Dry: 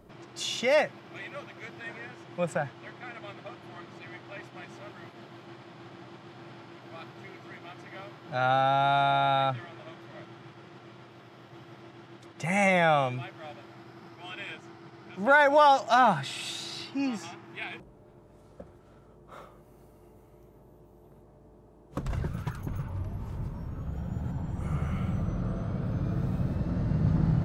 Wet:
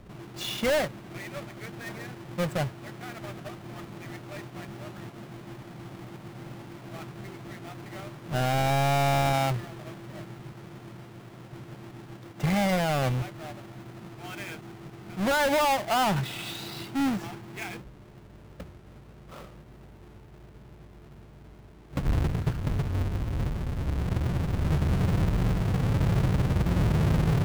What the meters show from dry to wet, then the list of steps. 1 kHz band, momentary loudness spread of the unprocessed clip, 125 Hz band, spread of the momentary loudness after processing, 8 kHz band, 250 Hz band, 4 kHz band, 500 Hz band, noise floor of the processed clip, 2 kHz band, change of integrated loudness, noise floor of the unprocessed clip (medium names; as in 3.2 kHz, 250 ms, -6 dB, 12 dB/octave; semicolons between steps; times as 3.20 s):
-3.5 dB, 23 LU, +5.0 dB, 20 LU, +4.5 dB, +3.5 dB, +1.0 dB, -1.5 dB, -50 dBFS, -3.0 dB, 0.0 dB, -55 dBFS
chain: square wave that keeps the level; tone controls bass +5 dB, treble -5 dB; peak limiter -16.5 dBFS, peak gain reduction 8 dB; trim -2 dB